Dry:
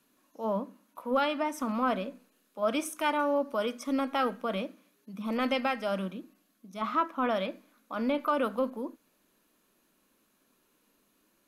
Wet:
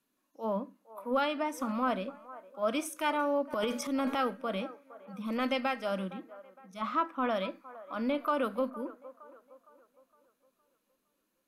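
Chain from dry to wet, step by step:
0:03.52–0:04.19: transient designer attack −2 dB, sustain +11 dB
noise reduction from a noise print of the clip's start 8 dB
delay with a band-pass on its return 462 ms, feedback 42%, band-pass 820 Hz, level −16 dB
level −2 dB

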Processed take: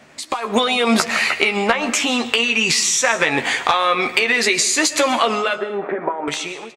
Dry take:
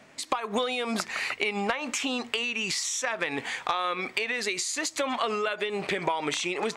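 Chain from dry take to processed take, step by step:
fade-out on the ending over 1.91 s
0:05.57–0:06.28: Chebyshev band-pass filter 220–1,500 Hz, order 3
in parallel at −1 dB: downward compressor, threshold −38 dBFS, peak gain reduction 15.5 dB
on the sum: double-tracking delay 13 ms −7 dB
automatic gain control gain up to 13 dB
on a send at −12.5 dB: convolution reverb RT60 0.65 s, pre-delay 90 ms

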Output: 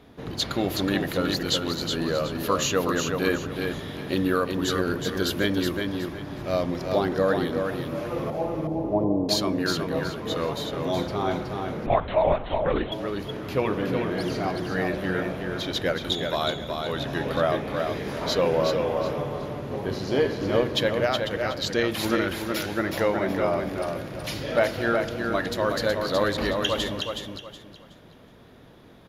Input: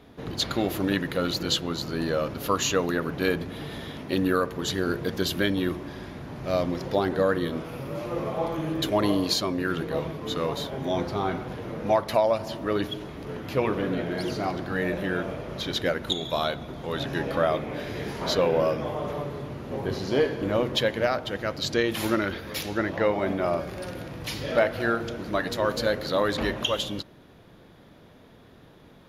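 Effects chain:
0:08.30–0:09.29: Butterworth low-pass 910 Hz 48 dB per octave
repeating echo 370 ms, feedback 28%, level −5 dB
0:11.86–0:12.92: linear-prediction vocoder at 8 kHz whisper

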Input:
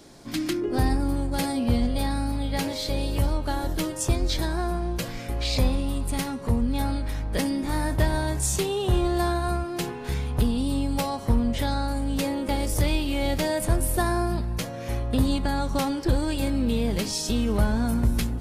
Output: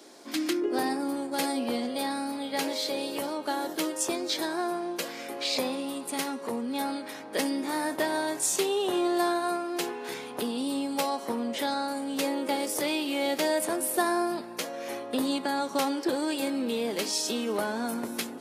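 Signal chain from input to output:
high-pass filter 280 Hz 24 dB per octave

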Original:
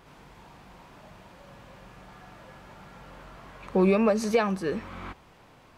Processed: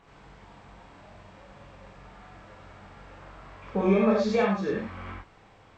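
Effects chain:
hearing-aid frequency compression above 2,400 Hz 1.5 to 1
reverb whose tail is shaped and stops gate 130 ms flat, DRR −3.5 dB
level −5 dB

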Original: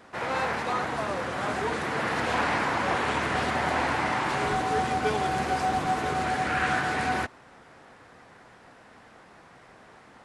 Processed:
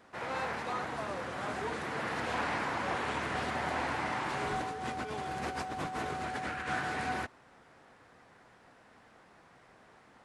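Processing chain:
0:04.60–0:06.69: compressor whose output falls as the input rises −30 dBFS, ratio −1
level −7.5 dB

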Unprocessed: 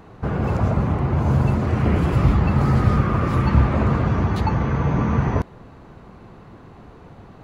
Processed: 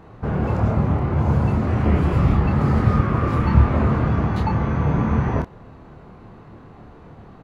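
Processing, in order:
high-shelf EQ 3,700 Hz −6.5 dB
double-tracking delay 27 ms −4.5 dB
level −1 dB

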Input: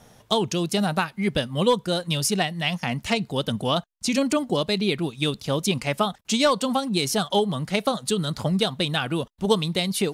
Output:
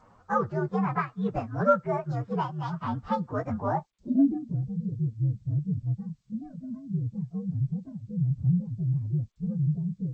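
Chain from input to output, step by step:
partials spread apart or drawn together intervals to 124%
low-pass filter sweep 1,300 Hz → 140 Hz, 0:03.54–0:04.57
level −2.5 dB
G.722 64 kbit/s 16,000 Hz

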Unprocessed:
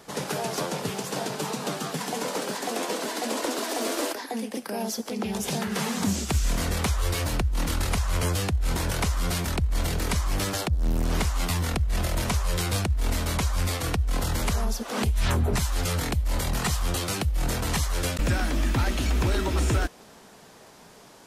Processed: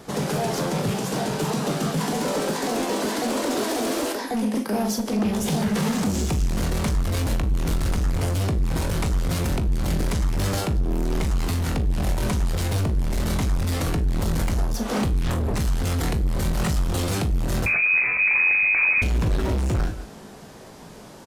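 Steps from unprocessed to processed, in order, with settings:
brickwall limiter −20.5 dBFS, peak gain reduction 6 dB
low-shelf EQ 440 Hz +9.5 dB
double-tracking delay 43 ms −9 dB
single-tap delay 177 ms −19 dB
hard clipping −22.5 dBFS, distortion −7 dB
0:17.66–0:19.02: voice inversion scrambler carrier 2,500 Hz
tuned comb filter 53 Hz, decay 0.26 s, harmonics all, mix 70%
level +7 dB

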